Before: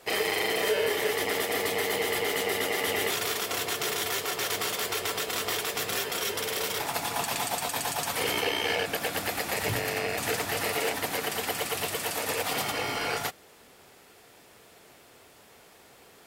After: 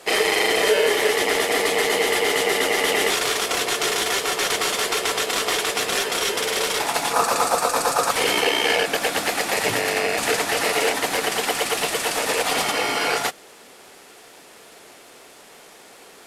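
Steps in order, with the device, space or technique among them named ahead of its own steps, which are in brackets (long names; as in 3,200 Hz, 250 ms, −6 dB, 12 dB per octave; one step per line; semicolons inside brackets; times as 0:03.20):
early wireless headset (high-pass filter 220 Hz 12 dB per octave; variable-slope delta modulation 64 kbit/s)
0:07.13–0:08.11: thirty-one-band graphic EQ 500 Hz +12 dB, 1,250 Hz +12 dB, 2,000 Hz −6 dB, 3,150 Hz −10 dB
level +8.5 dB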